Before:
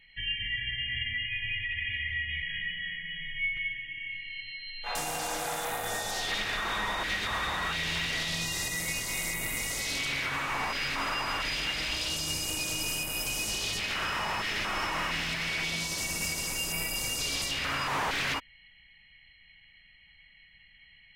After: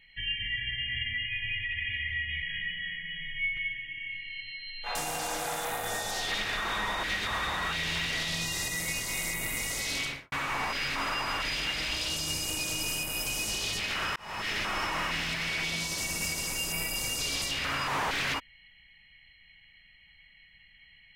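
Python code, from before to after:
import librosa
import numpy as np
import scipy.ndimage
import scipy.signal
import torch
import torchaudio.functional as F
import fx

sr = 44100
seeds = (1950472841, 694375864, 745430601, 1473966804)

y = fx.studio_fade_out(x, sr, start_s=10.02, length_s=0.3)
y = fx.edit(y, sr, fx.fade_in_span(start_s=14.16, length_s=0.33), tone=tone)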